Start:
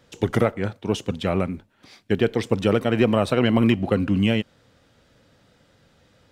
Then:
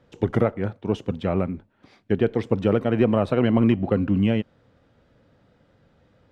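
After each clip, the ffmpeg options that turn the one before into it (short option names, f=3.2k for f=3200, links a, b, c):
-af "lowpass=f=1.2k:p=1"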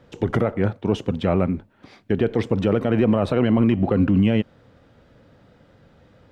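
-af "alimiter=level_in=15dB:limit=-1dB:release=50:level=0:latency=1,volume=-8.5dB"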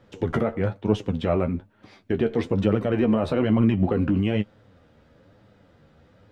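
-af "flanger=delay=9.3:depth=4.1:regen=33:speed=1.1:shape=sinusoidal,volume=1dB"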